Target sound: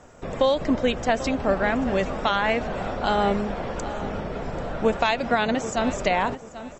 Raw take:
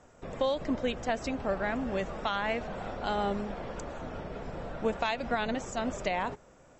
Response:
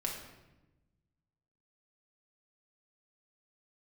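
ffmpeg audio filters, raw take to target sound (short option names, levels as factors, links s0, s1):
-filter_complex "[0:a]asettb=1/sr,asplit=3[s0][s1][s2];[s0]atrim=end=5.194[s3];[s1]atrim=start=5.19:end=5.76,asetpts=PTS-STARTPTS,afade=t=in:d=0.004:c=qsin,afade=t=out:st=0.566:d=0.004:c=qsin,highpass=87[s4];[s2]atrim=start=5.756[s5];[s3][s4]acrossfade=d=0.004:c1=hsin:c2=qsin[s6];[s6][s5]acrossfade=d=0.004:c1=qsin:c2=hsin,asplit=2[s7][s8];[s8]adelay=788,lowpass=f=4700:p=1,volume=0.2,asplit=2[s9][s10];[s10]adelay=788,lowpass=f=4700:p=1,volume=0.28,asplit=2[s11][s12];[s12]adelay=788,lowpass=f=4700:p=1,volume=0.28[s13];[s7][s9][s11][s13]amix=inputs=4:normalize=0,volume=2.66"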